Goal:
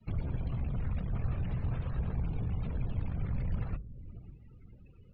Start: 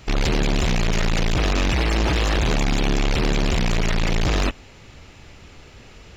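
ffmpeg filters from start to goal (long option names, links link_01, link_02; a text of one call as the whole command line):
ffmpeg -i in.wav -filter_complex "[0:a]acrossover=split=130|3000[link_01][link_02][link_03];[link_02]acompressor=threshold=-53dB:ratio=1.5[link_04];[link_01][link_04][link_03]amix=inputs=3:normalize=0,afftfilt=real='hypot(re,im)*cos(2*PI*random(0))':imag='hypot(re,im)*sin(2*PI*random(1))':win_size=512:overlap=0.75,acrossover=split=330|1700[link_05][link_06][link_07];[link_07]acompressor=threshold=-52dB:ratio=10[link_08];[link_05][link_06][link_08]amix=inputs=3:normalize=0,atempo=1.2,lowpass=4300,equalizer=frequency=1300:width_type=o:width=0.5:gain=2.5,asplit=2[link_09][link_10];[link_10]adelay=556,lowpass=frequency=950:poles=1,volume=-14.5dB,asplit=2[link_11][link_12];[link_12]adelay=556,lowpass=frequency=950:poles=1,volume=0.4,asplit=2[link_13][link_14];[link_14]adelay=556,lowpass=frequency=950:poles=1,volume=0.4,asplit=2[link_15][link_16];[link_16]adelay=556,lowpass=frequency=950:poles=1,volume=0.4[link_17];[link_11][link_13][link_15][link_17]amix=inputs=4:normalize=0[link_18];[link_09][link_18]amix=inputs=2:normalize=0,afftdn=noise_reduction=27:noise_floor=-49,bandreject=frequency=50:width_type=h:width=6,bandreject=frequency=100:width_type=h:width=6,bandreject=frequency=150:width_type=h:width=6,adynamicequalizer=threshold=0.00178:dfrequency=330:dqfactor=2.7:tfrequency=330:tqfactor=2.7:attack=5:release=100:ratio=0.375:range=2.5:mode=cutabove:tftype=bell,volume=-4dB" out.wav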